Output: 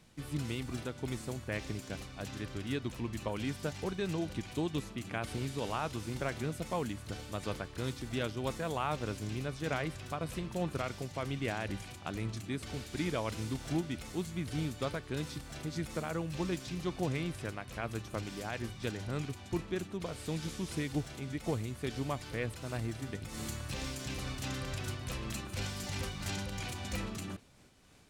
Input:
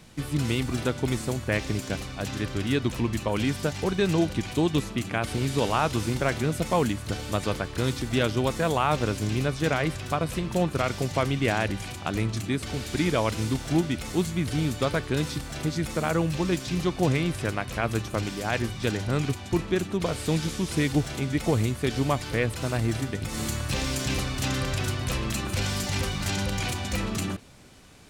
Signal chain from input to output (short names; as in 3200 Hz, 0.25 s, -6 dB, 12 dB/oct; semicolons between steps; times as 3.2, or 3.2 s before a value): noise-modulated level, depth 55%; gain -7.5 dB